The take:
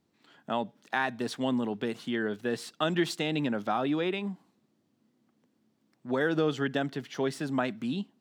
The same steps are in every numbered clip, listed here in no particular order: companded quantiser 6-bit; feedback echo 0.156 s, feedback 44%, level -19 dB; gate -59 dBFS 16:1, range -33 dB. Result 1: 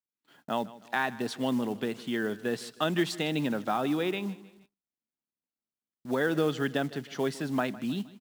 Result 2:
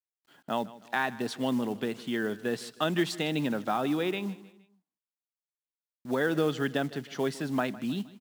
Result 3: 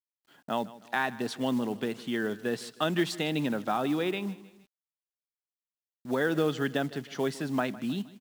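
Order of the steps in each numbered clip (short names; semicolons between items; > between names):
companded quantiser > feedback echo > gate; gate > companded quantiser > feedback echo; feedback echo > gate > companded quantiser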